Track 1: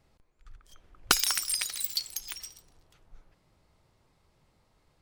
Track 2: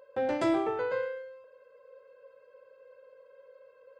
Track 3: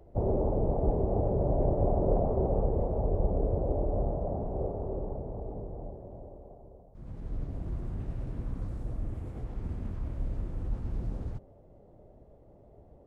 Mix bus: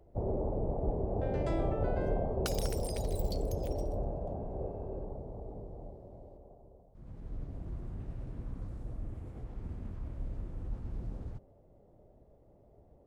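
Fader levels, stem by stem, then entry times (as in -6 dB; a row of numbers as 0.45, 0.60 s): -16.5, -11.0, -5.5 dB; 1.35, 1.05, 0.00 s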